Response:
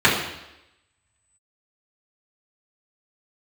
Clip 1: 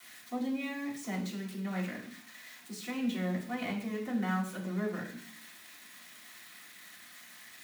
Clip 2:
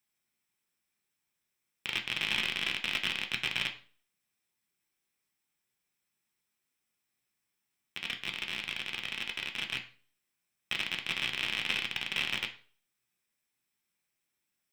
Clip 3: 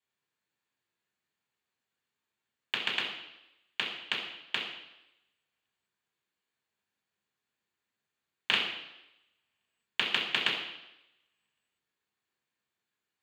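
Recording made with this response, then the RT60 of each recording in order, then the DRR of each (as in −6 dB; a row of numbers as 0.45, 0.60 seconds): 3; 0.60, 0.40, 0.90 seconds; −14.0, 3.0, −8.5 decibels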